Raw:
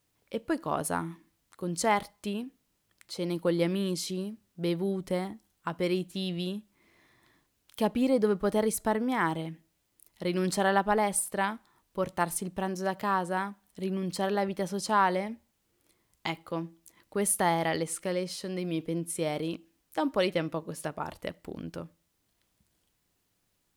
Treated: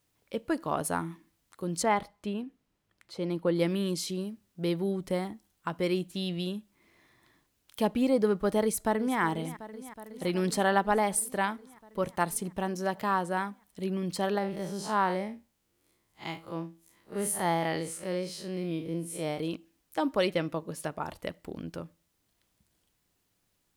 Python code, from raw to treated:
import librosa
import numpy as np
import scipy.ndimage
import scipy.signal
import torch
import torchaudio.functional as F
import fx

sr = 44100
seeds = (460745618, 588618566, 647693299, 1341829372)

y = fx.high_shelf(x, sr, hz=4100.0, db=-12.0, at=(1.83, 3.56))
y = fx.echo_throw(y, sr, start_s=8.61, length_s=0.58, ms=370, feedback_pct=80, wet_db=-14.5)
y = fx.spec_blur(y, sr, span_ms=92.0, at=(14.38, 19.39))